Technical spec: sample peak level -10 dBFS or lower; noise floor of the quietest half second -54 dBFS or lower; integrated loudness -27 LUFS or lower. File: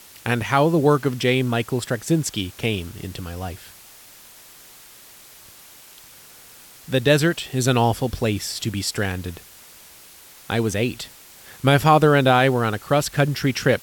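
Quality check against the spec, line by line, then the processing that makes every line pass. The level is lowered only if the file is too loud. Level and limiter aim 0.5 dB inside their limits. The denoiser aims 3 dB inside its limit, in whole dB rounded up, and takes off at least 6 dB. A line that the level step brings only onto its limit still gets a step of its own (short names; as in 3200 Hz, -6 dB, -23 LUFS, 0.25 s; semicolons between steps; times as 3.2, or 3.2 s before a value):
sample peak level -4.5 dBFS: fail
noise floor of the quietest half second -46 dBFS: fail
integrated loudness -20.5 LUFS: fail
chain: denoiser 6 dB, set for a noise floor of -46 dBFS; gain -7 dB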